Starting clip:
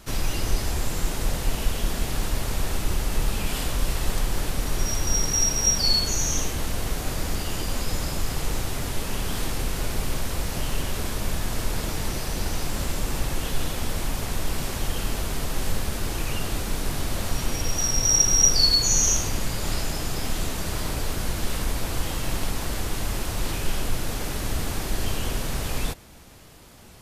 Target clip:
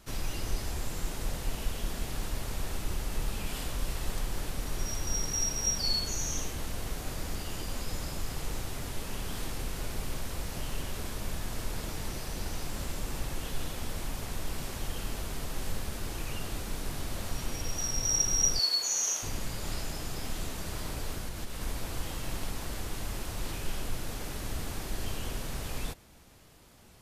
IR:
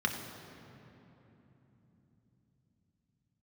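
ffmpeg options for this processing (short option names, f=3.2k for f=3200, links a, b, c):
-filter_complex "[0:a]asettb=1/sr,asplit=3[a][b][c];[a]atrim=end=18.594[d];[b]atrim=start=18.59:end=19.23,asetpts=PTS-STARTPTS,afade=t=in:d=0.004:c=qsin,afade=t=out:st=0.636:d=0.004:c=qsin,highpass=530[e];[c]atrim=start=19.226[f];[d][e]acrossfade=d=0.004:c1=hsin:c2=qsin[g];[g][f]acrossfade=d=0.004:c1=qsin:c2=hsin,asettb=1/sr,asplit=3[h][i][j];[h]atrim=end=21.174[k];[i]atrim=start=21.17:end=21.62,asetpts=PTS-STARTPTS,afade=t=in:d=0.004:c=qsin,afade=t=out:st=0.446:d=0.004:c=qsin,acompressor=threshold=-23dB:ratio=6[l];[j]atrim=start=21.616[m];[k][l]acrossfade=d=0.004:c1=hsin:c2=qsin[n];[n][m]acrossfade=d=0.004:c1=qsin:c2=hsin,volume=-8.5dB"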